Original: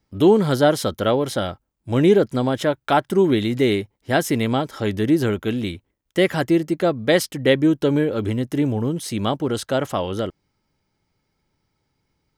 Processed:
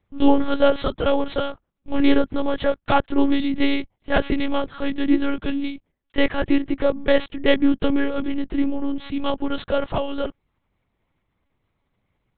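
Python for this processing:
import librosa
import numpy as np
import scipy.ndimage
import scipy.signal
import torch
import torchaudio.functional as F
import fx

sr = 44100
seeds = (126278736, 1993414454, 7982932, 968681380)

y = fx.tracing_dist(x, sr, depth_ms=0.084)
y = fx.lpc_monotone(y, sr, seeds[0], pitch_hz=280.0, order=8)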